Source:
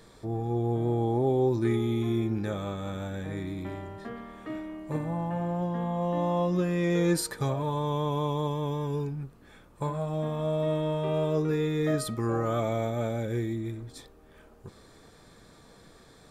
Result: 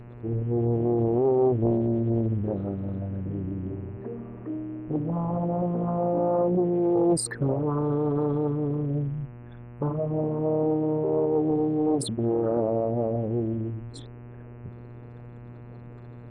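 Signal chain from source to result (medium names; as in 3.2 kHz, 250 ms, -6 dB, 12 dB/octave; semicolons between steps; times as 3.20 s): resonances exaggerated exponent 3; mains buzz 120 Hz, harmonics 24, -47 dBFS -8 dB/octave; loudspeaker Doppler distortion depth 0.64 ms; trim +3.5 dB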